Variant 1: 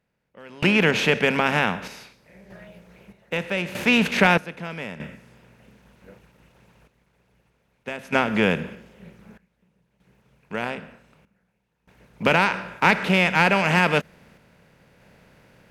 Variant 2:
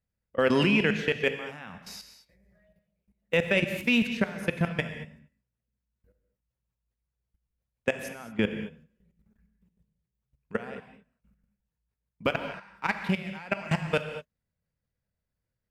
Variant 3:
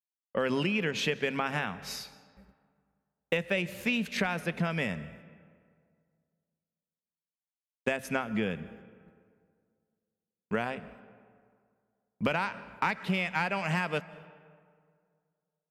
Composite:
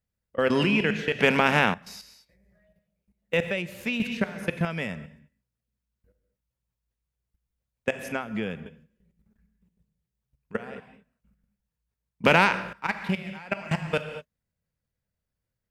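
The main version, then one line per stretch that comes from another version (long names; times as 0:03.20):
2
0:01.19–0:01.74: punch in from 1
0:03.51–0:04.00: punch in from 3
0:04.65–0:05.06: punch in from 3
0:08.12–0:08.66: punch in from 3
0:12.24–0:12.73: punch in from 1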